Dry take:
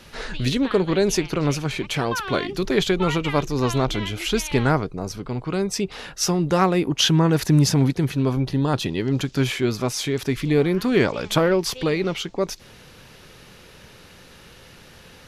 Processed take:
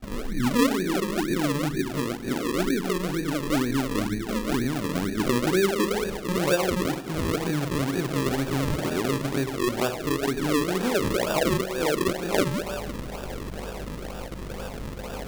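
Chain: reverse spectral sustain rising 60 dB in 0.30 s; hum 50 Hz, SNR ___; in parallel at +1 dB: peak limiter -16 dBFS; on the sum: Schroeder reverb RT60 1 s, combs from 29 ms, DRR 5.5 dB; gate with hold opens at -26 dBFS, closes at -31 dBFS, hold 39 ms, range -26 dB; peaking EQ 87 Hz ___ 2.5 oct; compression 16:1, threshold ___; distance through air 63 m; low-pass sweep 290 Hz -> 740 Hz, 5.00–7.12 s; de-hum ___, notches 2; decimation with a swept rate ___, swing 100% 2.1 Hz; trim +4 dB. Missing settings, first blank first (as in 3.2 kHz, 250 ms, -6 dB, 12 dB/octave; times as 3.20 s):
22 dB, -7 dB, -27 dBFS, 160.7 Hz, 41×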